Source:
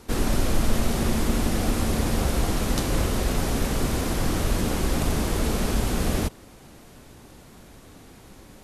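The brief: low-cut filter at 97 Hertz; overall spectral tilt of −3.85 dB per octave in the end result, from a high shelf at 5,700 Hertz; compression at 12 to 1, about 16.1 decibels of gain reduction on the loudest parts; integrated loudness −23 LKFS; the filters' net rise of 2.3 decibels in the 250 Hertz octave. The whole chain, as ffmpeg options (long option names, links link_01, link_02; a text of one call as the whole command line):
ffmpeg -i in.wav -af "highpass=97,equalizer=frequency=250:width_type=o:gain=3,highshelf=frequency=5700:gain=8,acompressor=threshold=-37dB:ratio=12,volume=18dB" out.wav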